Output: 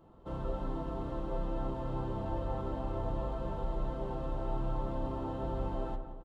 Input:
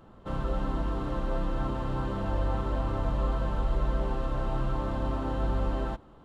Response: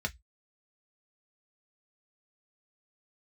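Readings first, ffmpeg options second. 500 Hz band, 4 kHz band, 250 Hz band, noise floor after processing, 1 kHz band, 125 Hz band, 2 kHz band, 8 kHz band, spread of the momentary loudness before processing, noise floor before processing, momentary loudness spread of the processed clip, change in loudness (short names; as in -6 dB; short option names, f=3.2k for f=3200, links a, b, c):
-3.5 dB, -9.5 dB, -5.0 dB, -48 dBFS, -5.0 dB, -7.0 dB, -12.0 dB, n/a, 2 LU, -53 dBFS, 2 LU, -6.0 dB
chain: -filter_complex "[0:a]asplit=2[a][b];[b]adelay=176,lowpass=f=1.9k:p=1,volume=-9dB,asplit=2[c][d];[d]adelay=176,lowpass=f=1.9k:p=1,volume=0.5,asplit=2[e][f];[f]adelay=176,lowpass=f=1.9k:p=1,volume=0.5,asplit=2[g][h];[h]adelay=176,lowpass=f=1.9k:p=1,volume=0.5,asplit=2[i][j];[j]adelay=176,lowpass=f=1.9k:p=1,volume=0.5,asplit=2[k][l];[l]adelay=176,lowpass=f=1.9k:p=1,volume=0.5[m];[a][c][e][g][i][k][m]amix=inputs=7:normalize=0,asplit=2[n][o];[1:a]atrim=start_sample=2205,asetrate=22491,aresample=44100[p];[o][p]afir=irnorm=-1:irlink=0,volume=-11.5dB[q];[n][q]amix=inputs=2:normalize=0,volume=-8.5dB"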